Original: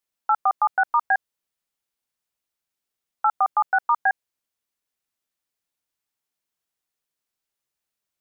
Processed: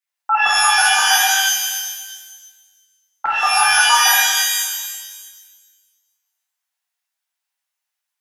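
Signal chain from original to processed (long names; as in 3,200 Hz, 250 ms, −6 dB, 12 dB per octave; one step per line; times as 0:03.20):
auto-filter high-pass square 8.6 Hz 840–1,800 Hz
reverb with rising layers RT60 1.4 s, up +12 semitones, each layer −2 dB, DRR −6.5 dB
level −6.5 dB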